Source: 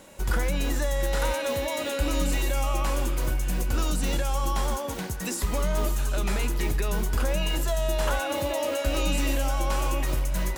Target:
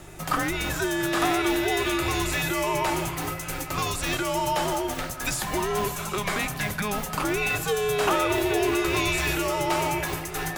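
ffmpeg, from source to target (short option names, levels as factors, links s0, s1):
-filter_complex "[0:a]aeval=exprs='val(0)+0.0178*(sin(2*PI*50*n/s)+sin(2*PI*2*50*n/s)/2+sin(2*PI*3*50*n/s)/3+sin(2*PI*4*50*n/s)/4+sin(2*PI*5*50*n/s)/5)':c=same,highpass=f=890:p=1,asplit=2[s0][s1];[s1]adynamicsmooth=sensitivity=4.5:basefreq=2800,volume=1[s2];[s0][s2]amix=inputs=2:normalize=0,afreqshift=-210,volume=1.5"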